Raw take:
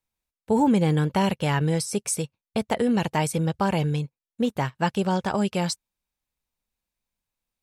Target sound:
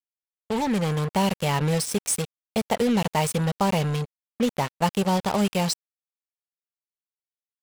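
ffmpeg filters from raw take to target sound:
-af "equalizer=f=125:t=o:w=0.33:g=-8,equalizer=f=315:t=o:w=0.33:g=-10,equalizer=f=1600:t=o:w=0.33:g=-11,dynaudnorm=f=390:g=5:m=2.51,acrusher=bits=3:mix=0:aa=0.5,volume=0.562"

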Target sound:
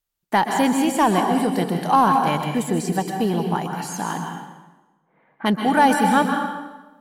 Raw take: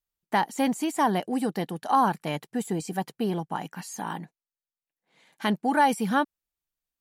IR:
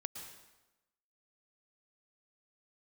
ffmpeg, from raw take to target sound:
-filter_complex "[0:a]asplit=3[s0][s1][s2];[s0]afade=t=out:st=4.22:d=0.02[s3];[s1]lowpass=f=1600:w=0.5412,lowpass=f=1600:w=1.3066,afade=t=in:st=4.22:d=0.02,afade=t=out:st=5.45:d=0.02[s4];[s2]afade=t=in:st=5.45:d=0.02[s5];[s3][s4][s5]amix=inputs=3:normalize=0[s6];[1:a]atrim=start_sample=2205,asetrate=39249,aresample=44100[s7];[s6][s7]afir=irnorm=-1:irlink=0,asplit=2[s8][s9];[s9]asoftclip=type=hard:threshold=0.0531,volume=0.316[s10];[s8][s10]amix=inputs=2:normalize=0,volume=2.11"

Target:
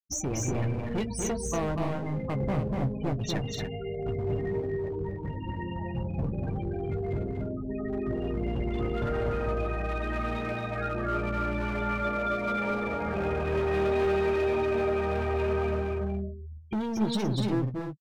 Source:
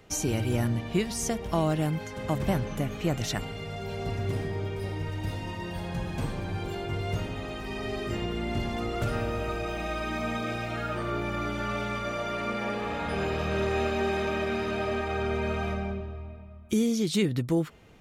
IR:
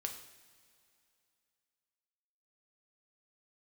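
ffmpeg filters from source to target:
-filter_complex "[0:a]asplit=3[s0][s1][s2];[s0]afade=t=out:st=6.61:d=0.02[s3];[s1]highshelf=f=2200:g=-8,afade=t=in:st=6.61:d=0.02,afade=t=out:st=8.67:d=0.02[s4];[s2]afade=t=in:st=8.67:d=0.02[s5];[s3][s4][s5]amix=inputs=3:normalize=0,afftfilt=real='re*gte(hypot(re,im),0.0447)':imag='im*gte(hypot(re,im),0.0447)':win_size=1024:overlap=0.75,asoftclip=type=hard:threshold=0.0447,asplit=2[s6][s7];[s7]adelay=15,volume=0.355[s8];[s6][s8]amix=inputs=2:normalize=0,asplit=2[s9][s10];[s10]aecho=0:1:242|288.6:0.631|0.447[s11];[s9][s11]amix=inputs=2:normalize=0"

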